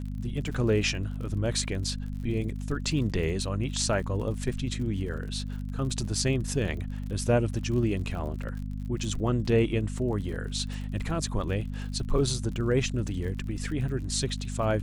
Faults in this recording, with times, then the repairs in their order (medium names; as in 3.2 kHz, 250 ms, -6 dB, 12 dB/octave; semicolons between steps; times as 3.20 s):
crackle 50 per s -37 dBFS
hum 50 Hz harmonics 5 -34 dBFS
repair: de-click; de-hum 50 Hz, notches 5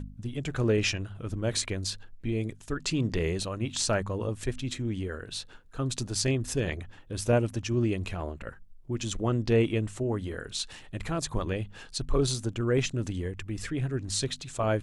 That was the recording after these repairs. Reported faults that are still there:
nothing left